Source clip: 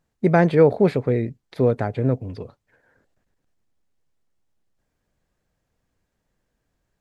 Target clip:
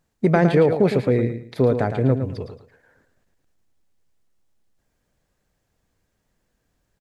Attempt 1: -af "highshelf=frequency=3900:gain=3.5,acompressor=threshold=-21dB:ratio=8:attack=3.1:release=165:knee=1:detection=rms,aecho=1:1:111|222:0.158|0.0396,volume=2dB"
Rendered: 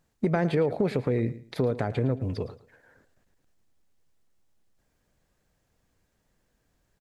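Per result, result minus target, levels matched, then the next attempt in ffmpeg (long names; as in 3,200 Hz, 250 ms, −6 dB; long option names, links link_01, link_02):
downward compressor: peak gain reduction +8.5 dB; echo-to-direct −7.5 dB
-af "highshelf=frequency=3900:gain=3.5,acompressor=threshold=-11.5dB:ratio=8:attack=3.1:release=165:knee=1:detection=rms,aecho=1:1:111|222:0.158|0.0396,volume=2dB"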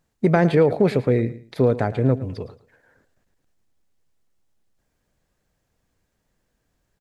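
echo-to-direct −7.5 dB
-af "highshelf=frequency=3900:gain=3.5,acompressor=threshold=-11.5dB:ratio=8:attack=3.1:release=165:knee=1:detection=rms,aecho=1:1:111|222|333:0.376|0.094|0.0235,volume=2dB"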